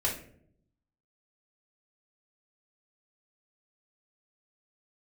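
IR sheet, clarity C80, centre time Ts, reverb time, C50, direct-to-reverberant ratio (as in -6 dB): 12.0 dB, 25 ms, not exponential, 7.0 dB, -6.5 dB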